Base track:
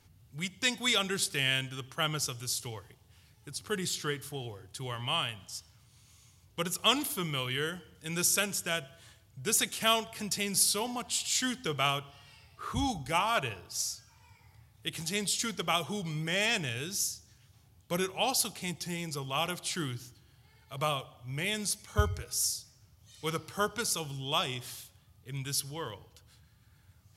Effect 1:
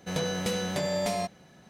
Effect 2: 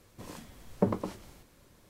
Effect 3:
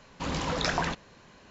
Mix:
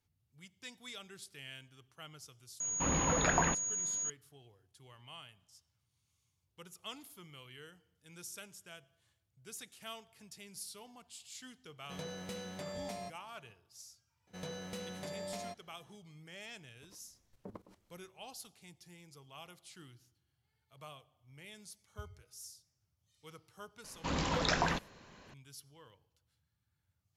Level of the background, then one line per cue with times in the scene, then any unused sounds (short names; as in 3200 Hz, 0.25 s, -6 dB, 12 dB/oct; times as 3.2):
base track -20 dB
2.6 add 3 -1.5 dB + pulse-width modulation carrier 6700 Hz
11.83 add 1 -14 dB
14.27 add 1 -14 dB
16.63 add 2 -15.5 dB + level quantiser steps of 15 dB
23.84 add 3 -3 dB